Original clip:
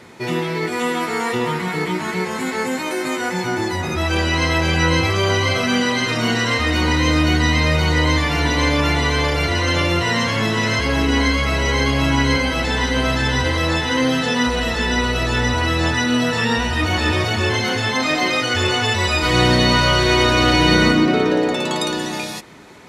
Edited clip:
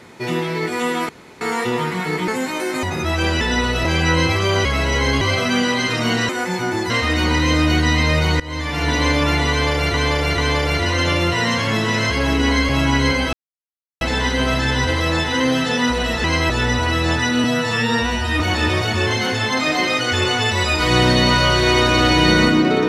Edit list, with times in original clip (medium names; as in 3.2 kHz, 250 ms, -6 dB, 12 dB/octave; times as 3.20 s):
1.09 s: insert room tone 0.32 s
1.96–2.59 s: delete
3.14–3.75 s: move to 6.47 s
4.33–4.59 s: swap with 14.81–15.25 s
7.97–8.50 s: fade in, from -21.5 dB
9.07–9.51 s: loop, 3 plays
11.38–11.94 s: move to 5.39 s
12.58 s: insert silence 0.68 s
16.19–16.83 s: stretch 1.5×